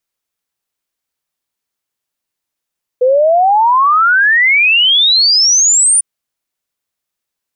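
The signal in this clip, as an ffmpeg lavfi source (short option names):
-f lavfi -i "aevalsrc='0.473*clip(min(t,3-t)/0.01,0,1)*sin(2*PI*490*3/log(9500/490)*(exp(log(9500/490)*t/3)-1))':d=3:s=44100"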